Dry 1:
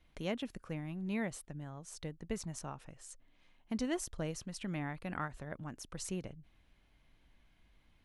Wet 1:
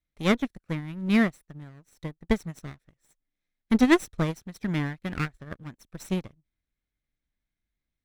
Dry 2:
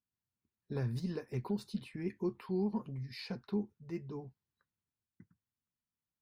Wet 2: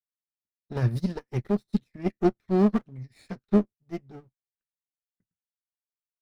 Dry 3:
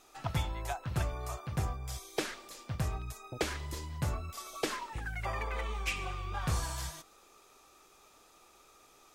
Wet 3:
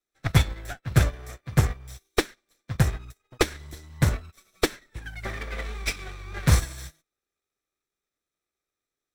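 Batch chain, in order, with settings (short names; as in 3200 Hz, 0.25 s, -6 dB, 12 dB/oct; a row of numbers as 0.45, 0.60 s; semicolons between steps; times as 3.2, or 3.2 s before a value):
minimum comb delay 0.52 ms; upward expander 2.5:1, over -56 dBFS; match loudness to -27 LUFS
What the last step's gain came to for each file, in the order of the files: +18.5, +16.0, +16.0 dB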